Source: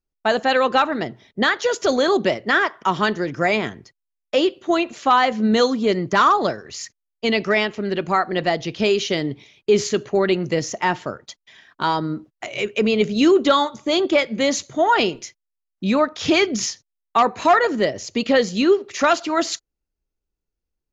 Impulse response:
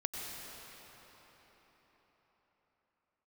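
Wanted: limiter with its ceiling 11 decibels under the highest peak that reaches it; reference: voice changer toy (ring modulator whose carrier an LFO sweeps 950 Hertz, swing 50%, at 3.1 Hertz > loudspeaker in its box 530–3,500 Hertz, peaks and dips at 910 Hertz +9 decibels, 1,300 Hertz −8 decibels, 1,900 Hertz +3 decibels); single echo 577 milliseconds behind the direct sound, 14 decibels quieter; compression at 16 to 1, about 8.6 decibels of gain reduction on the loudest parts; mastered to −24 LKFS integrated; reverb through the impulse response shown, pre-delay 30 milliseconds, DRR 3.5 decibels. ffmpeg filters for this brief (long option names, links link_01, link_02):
-filter_complex "[0:a]acompressor=threshold=-19dB:ratio=16,alimiter=limit=-19.5dB:level=0:latency=1,aecho=1:1:577:0.2,asplit=2[link_01][link_02];[1:a]atrim=start_sample=2205,adelay=30[link_03];[link_02][link_03]afir=irnorm=-1:irlink=0,volume=-6dB[link_04];[link_01][link_04]amix=inputs=2:normalize=0,aeval=exprs='val(0)*sin(2*PI*950*n/s+950*0.5/3.1*sin(2*PI*3.1*n/s))':channel_layout=same,highpass=530,equalizer=frequency=910:width_type=q:width=4:gain=9,equalizer=frequency=1300:width_type=q:width=4:gain=-8,equalizer=frequency=1900:width_type=q:width=4:gain=3,lowpass=frequency=3500:width=0.5412,lowpass=frequency=3500:width=1.3066,volume=5.5dB"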